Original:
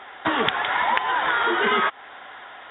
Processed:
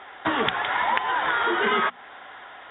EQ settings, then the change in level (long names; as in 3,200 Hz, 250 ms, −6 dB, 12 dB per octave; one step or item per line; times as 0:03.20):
high-frequency loss of the air 53 metres
low-shelf EQ 170 Hz +3 dB
mains-hum notches 60/120/180/240 Hz
−1.5 dB